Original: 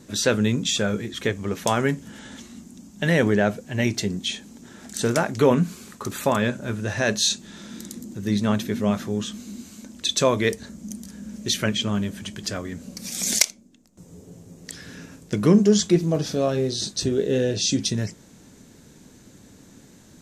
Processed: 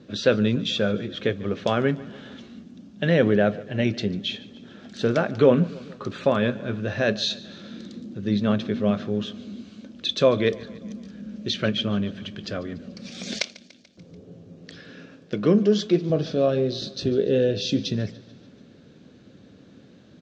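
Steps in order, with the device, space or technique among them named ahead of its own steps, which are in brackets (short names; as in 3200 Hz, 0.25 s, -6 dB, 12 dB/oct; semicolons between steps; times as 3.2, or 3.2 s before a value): 14.8–16.1 HPF 230 Hz 6 dB/oct; guitar cabinet (speaker cabinet 88–4100 Hz, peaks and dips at 530 Hz +4 dB, 920 Hz -9 dB, 2000 Hz -6 dB); feedback echo 0.145 s, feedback 59%, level -20.5 dB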